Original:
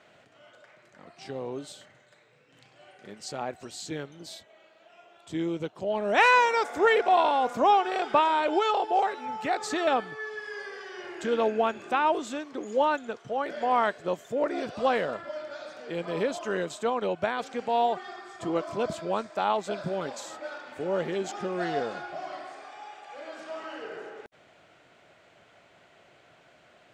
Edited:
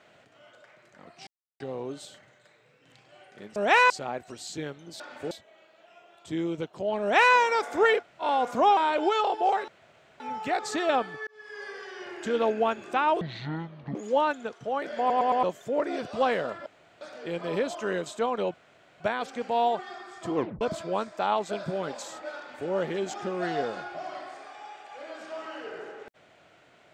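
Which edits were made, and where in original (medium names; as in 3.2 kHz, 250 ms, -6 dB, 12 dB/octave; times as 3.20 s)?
1.27 s: insert silence 0.33 s
6.03–6.37 s: copy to 3.23 s
7.01–7.26 s: room tone, crossfade 0.10 s
7.79–8.27 s: delete
9.18 s: insert room tone 0.52 s
10.25–10.67 s: fade in
12.19–12.59 s: speed 54%
13.63 s: stutter in place 0.11 s, 4 plays
15.30–15.65 s: room tone
17.18 s: insert room tone 0.46 s
18.54 s: tape stop 0.25 s
20.56–20.87 s: copy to 4.33 s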